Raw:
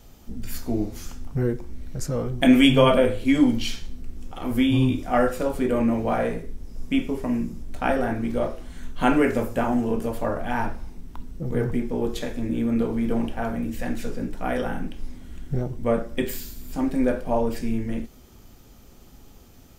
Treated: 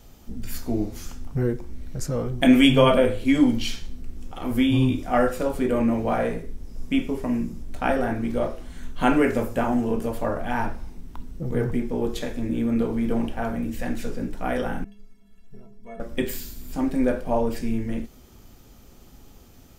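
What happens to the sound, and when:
14.84–16 metallic resonator 200 Hz, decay 0.4 s, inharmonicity 0.03

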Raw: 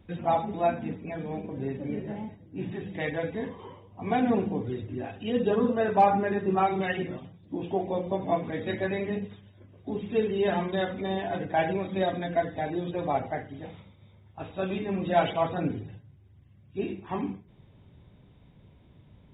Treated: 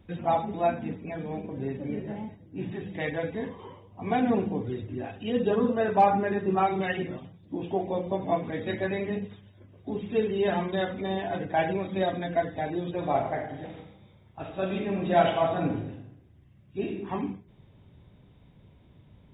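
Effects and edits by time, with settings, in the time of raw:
12.96–16.98 reverb throw, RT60 0.84 s, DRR 4 dB

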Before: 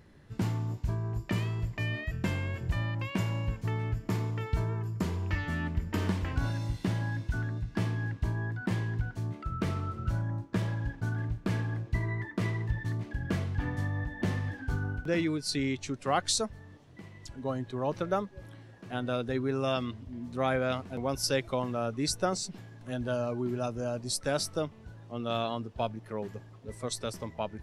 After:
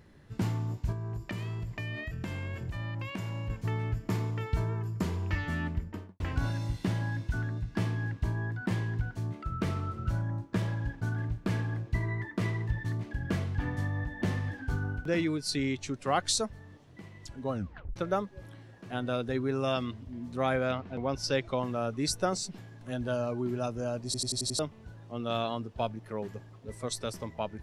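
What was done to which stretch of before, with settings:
0.92–3.5 compressor, threshold -32 dBFS
5.62–6.2 studio fade out
17.52 tape stop 0.44 s
20.71–21.61 LPF 3300 Hz -> 7200 Hz
24.05 stutter in place 0.09 s, 6 plays

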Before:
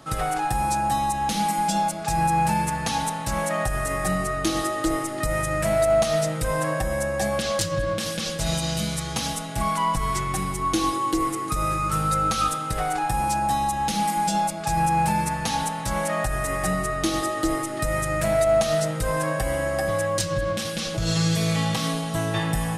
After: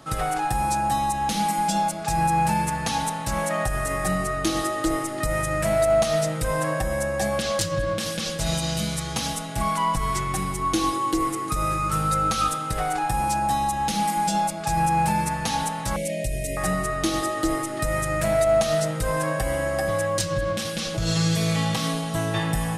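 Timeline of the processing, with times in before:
15.96–16.57 elliptic band-stop 610–2200 Hz, stop band 50 dB

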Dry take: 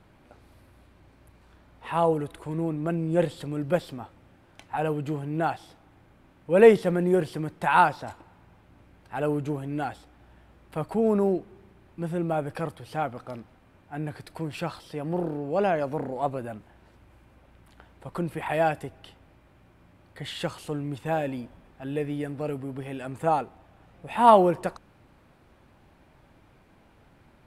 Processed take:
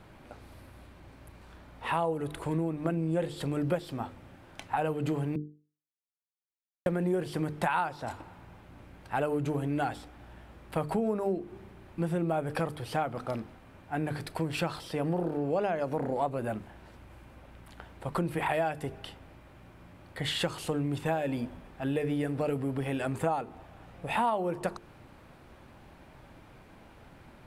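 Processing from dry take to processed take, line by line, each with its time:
5.36–6.86 mute
whole clip: notches 50/100/150/200/250/300/350/400/450 Hz; compressor 8:1, threshold -31 dBFS; gain +5 dB

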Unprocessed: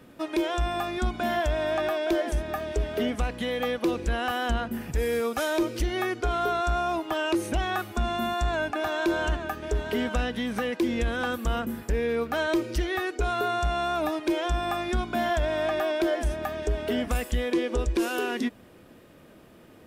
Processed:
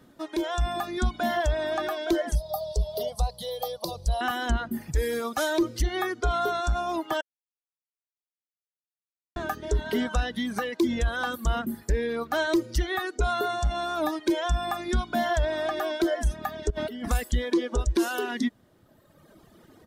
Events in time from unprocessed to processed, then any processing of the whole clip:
2.35–4.21 EQ curve 170 Hz 0 dB, 260 Hz -27 dB, 570 Hz +5 dB, 1000 Hz -3 dB, 1600 Hz -23 dB, 2400 Hz -15 dB, 4700 Hz +9 dB, 6800 Hz -4 dB, 11000 Hz +8 dB
7.21–9.36 mute
16.7–17.1 negative-ratio compressor -33 dBFS
whole clip: AGC gain up to 6 dB; reverb removal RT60 1.7 s; thirty-one-band EQ 500 Hz -4 dB, 2500 Hz -9 dB, 4000 Hz +3 dB, 6300 Hz +3 dB; gain -3.5 dB

